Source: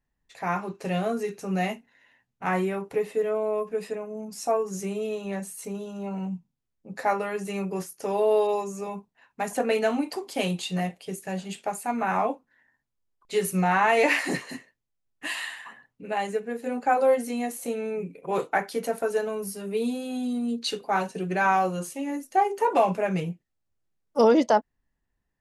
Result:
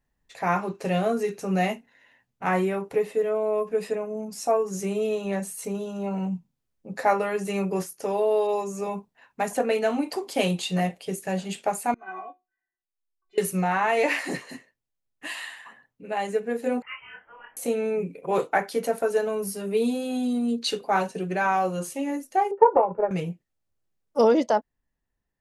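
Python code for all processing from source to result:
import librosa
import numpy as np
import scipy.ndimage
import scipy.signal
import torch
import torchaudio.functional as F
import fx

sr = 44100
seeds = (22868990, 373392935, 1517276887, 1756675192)

y = fx.chain(x, sr, fx.lowpass(hz=2800.0, slope=12),
    fx.stiff_resonator(f0_hz=360.0, decay_s=0.22, stiffness=0.008),
    fx.upward_expand(threshold_db=-52.0, expansion=1.5), at=(11.94, 13.38))
y = fx.chain(y, sr, fx.bessel_highpass(hz=2200.0, order=4),
    fx.freq_invert(carrier_hz=3600),
    fx.detune_double(cents=35), at=(16.82, 17.57))
y = fx.chain(y, sr, fx.lowpass(hz=1300.0, slope=24),
    fx.transient(attack_db=8, sustain_db=-5),
    fx.comb(ms=2.2, depth=0.55), at=(22.51, 23.11))
y = fx.peak_eq(y, sr, hz=540.0, db=2.5, octaves=0.77)
y = fx.rider(y, sr, range_db=3, speed_s=0.5)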